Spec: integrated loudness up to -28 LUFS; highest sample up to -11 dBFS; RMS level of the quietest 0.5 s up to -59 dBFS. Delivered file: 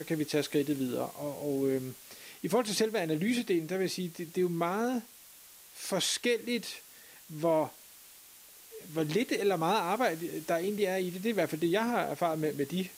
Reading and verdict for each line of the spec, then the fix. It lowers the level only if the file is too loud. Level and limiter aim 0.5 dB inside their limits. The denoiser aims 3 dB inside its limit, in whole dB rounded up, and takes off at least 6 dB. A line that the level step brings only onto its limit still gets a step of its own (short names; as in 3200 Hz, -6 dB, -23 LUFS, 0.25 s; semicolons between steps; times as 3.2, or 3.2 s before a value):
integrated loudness -31.5 LUFS: OK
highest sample -16.5 dBFS: OK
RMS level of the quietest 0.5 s -54 dBFS: fail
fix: denoiser 8 dB, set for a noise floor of -54 dBFS